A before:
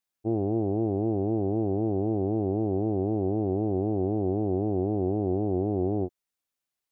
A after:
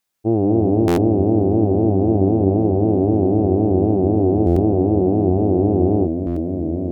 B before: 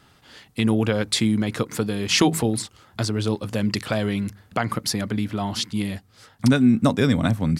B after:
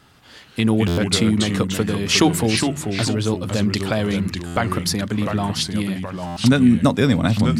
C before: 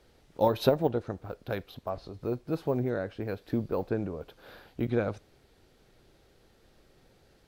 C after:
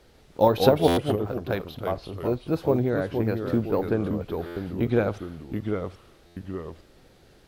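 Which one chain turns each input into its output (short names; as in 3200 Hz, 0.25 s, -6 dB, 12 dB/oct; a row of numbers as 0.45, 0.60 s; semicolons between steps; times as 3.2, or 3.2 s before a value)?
echoes that change speed 0.141 s, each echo -2 st, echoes 2, each echo -6 dB; stuck buffer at 0.87/4.46/6.26, samples 512, times 8; normalise peaks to -3 dBFS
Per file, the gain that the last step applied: +9.5, +2.5, +5.5 dB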